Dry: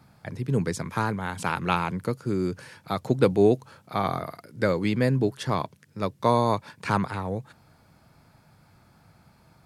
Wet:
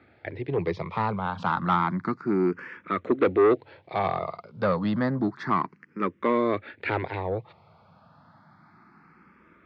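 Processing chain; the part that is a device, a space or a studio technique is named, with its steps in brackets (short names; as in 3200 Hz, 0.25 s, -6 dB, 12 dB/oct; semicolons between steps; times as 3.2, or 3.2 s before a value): barber-pole phaser into a guitar amplifier (endless phaser +0.3 Hz; soft clip -21.5 dBFS, distortion -10 dB; speaker cabinet 100–3500 Hz, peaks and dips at 130 Hz -8 dB, 350 Hz +5 dB, 1200 Hz +6 dB, 2000 Hz +5 dB, 3000 Hz -3 dB); gain +4.5 dB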